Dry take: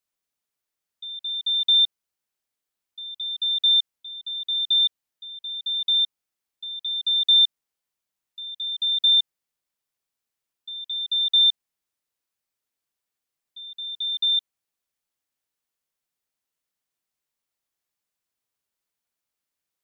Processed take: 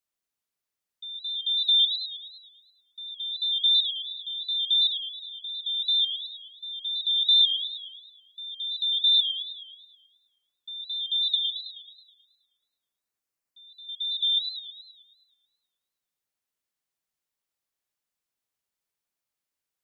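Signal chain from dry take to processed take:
0:11.35–0:13.89: parametric band 3,500 Hz −9.5 dB 0.33 octaves
feedback echo with a swinging delay time 107 ms, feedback 59%, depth 185 cents, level −9.5 dB
level −3 dB

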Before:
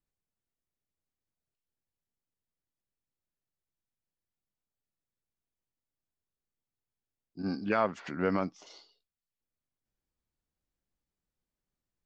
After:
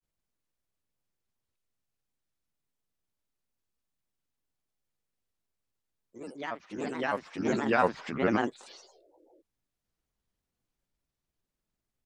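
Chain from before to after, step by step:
healed spectral selection 0:08.82–0:09.37, 330–690 Hz before
granular cloud, spray 15 ms, pitch spread up and down by 7 semitones
delay with pitch and tempo change per echo 149 ms, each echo +2 semitones, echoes 2, each echo −6 dB
level +4 dB

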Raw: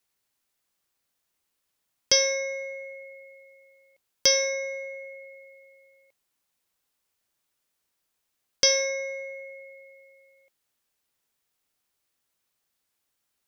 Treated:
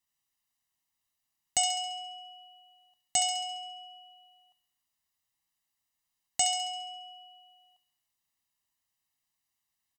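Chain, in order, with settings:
comb filter 1.4 ms, depth 70%
delay with a high-pass on its return 92 ms, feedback 54%, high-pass 1,700 Hz, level −3.5 dB
wrong playback speed 33 rpm record played at 45 rpm
level −7 dB

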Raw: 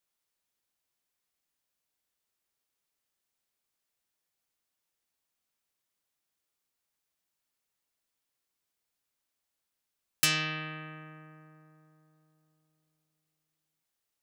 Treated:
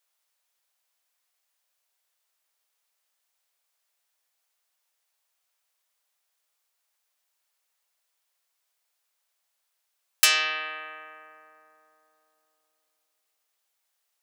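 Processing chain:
high-pass filter 530 Hz 24 dB per octave
level +7 dB

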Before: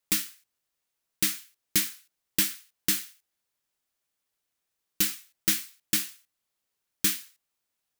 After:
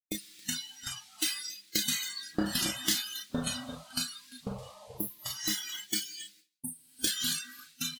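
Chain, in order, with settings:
0:01.82–0:02.46: running median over 15 samples
low-shelf EQ 63 Hz −10.5 dB
reverb whose tail is shaped and stops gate 330 ms falling, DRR 2 dB
multi-voice chorus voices 6, 0.57 Hz, delay 28 ms, depth 1.1 ms
downward compressor 8 to 1, threshold −39 dBFS, peak gain reduction 16 dB
leveller curve on the samples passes 1
0:04.64–0:05.47: healed spectral selection 1,300–9,800 Hz both
single-tap delay 274 ms −8.5 dB
delay with pitch and tempo change per echo 341 ms, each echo −4 semitones, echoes 2
noise reduction from a noise print of the clip's start 23 dB
noise gate with hold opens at −59 dBFS
octave-band graphic EQ 125/250/500/1,000/2,000/4,000/8,000 Hz −3/+6/+7/−5/+4/+11/+5 dB
level +5 dB

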